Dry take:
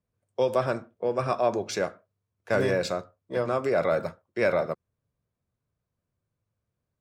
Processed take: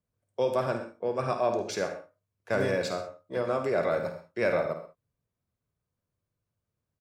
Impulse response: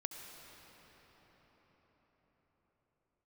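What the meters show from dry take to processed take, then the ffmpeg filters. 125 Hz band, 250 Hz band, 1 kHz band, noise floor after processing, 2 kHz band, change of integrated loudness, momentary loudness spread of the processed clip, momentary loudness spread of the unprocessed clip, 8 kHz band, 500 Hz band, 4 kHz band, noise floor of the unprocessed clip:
-2.5 dB, -2.5 dB, -2.0 dB, under -85 dBFS, -2.0 dB, -2.5 dB, 9 LU, 9 LU, -2.0 dB, -2.0 dB, -2.0 dB, -85 dBFS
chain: -filter_complex "[0:a]aecho=1:1:52|76:0.316|0.141[s0];[1:a]atrim=start_sample=2205,atrim=end_sample=6174[s1];[s0][s1]afir=irnorm=-1:irlink=0"

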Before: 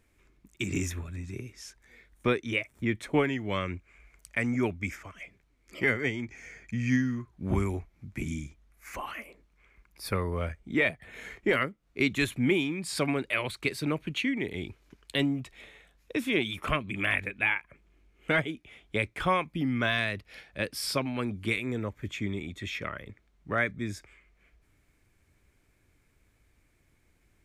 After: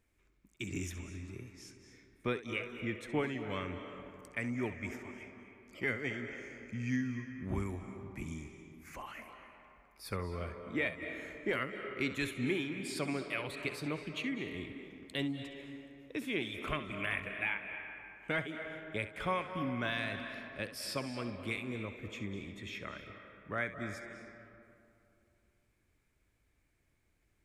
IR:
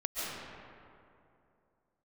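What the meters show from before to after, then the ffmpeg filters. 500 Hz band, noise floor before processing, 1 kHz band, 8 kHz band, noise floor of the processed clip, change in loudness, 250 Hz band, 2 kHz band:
-7.5 dB, -68 dBFS, -7.5 dB, -8.0 dB, -75 dBFS, -8.0 dB, -8.0 dB, -7.5 dB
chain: -filter_complex "[0:a]asplit=2[s0][s1];[s1]lowpass=f=9700:w=0.5412,lowpass=f=9700:w=1.3066[s2];[1:a]atrim=start_sample=2205,lowshelf=f=170:g=-10,adelay=67[s3];[s2][s3]afir=irnorm=-1:irlink=0,volume=0.282[s4];[s0][s4]amix=inputs=2:normalize=0,volume=0.376"

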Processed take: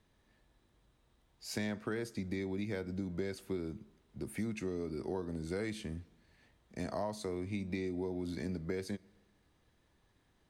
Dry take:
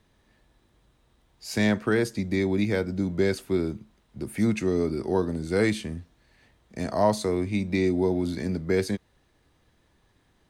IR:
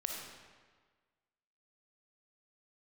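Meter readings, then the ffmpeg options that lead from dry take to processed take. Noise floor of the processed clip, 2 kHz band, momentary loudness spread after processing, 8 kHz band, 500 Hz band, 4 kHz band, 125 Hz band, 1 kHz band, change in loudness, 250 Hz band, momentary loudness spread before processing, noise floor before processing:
-73 dBFS, -13.5 dB, 7 LU, -10.5 dB, -13.5 dB, -11.5 dB, -12.0 dB, -14.5 dB, -13.0 dB, -12.5 dB, 11 LU, -66 dBFS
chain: -filter_complex "[0:a]acompressor=threshold=0.0447:ratio=6,asplit=2[s0][s1];[1:a]atrim=start_sample=2205[s2];[s1][s2]afir=irnorm=-1:irlink=0,volume=0.0794[s3];[s0][s3]amix=inputs=2:normalize=0,volume=0.422"

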